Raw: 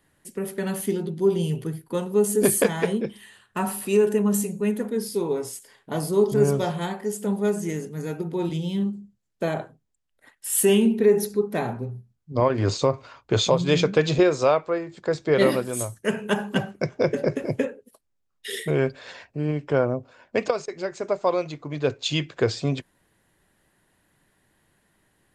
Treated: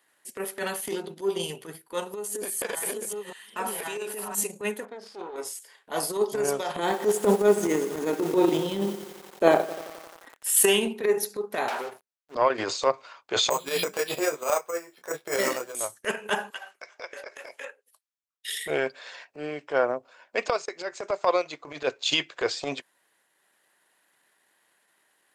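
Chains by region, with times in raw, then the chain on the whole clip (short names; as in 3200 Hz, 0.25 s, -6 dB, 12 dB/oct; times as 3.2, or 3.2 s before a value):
2.04–4.35 reverse delay 0.644 s, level -0.5 dB + compressor, threshold -25 dBFS
4.85–5.36 compressor 2:1, threshold -28 dBFS + tube stage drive 26 dB, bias 0.7 + air absorption 150 m
6.76–10.5 bell 300 Hz +14 dB 2.3 oct + lo-fi delay 88 ms, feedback 80%, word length 6-bit, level -13 dB
11.68–12.35 HPF 570 Hz + sample leveller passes 5
13.5–15.75 careless resampling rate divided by 6×, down filtered, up hold + detuned doubles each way 14 cents
16.5–18.66 HPF 880 Hz + compressor, threshold -35 dBFS + three-band expander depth 40%
whole clip: transient shaper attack +10 dB, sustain -7 dB; Bessel high-pass 730 Hz, order 2; transient shaper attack -12 dB, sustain +6 dB; gain +1.5 dB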